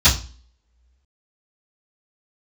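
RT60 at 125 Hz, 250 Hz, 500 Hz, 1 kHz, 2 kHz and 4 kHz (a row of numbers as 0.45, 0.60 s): 0.40, 0.50, 0.35, 0.35, 0.35, 0.40 s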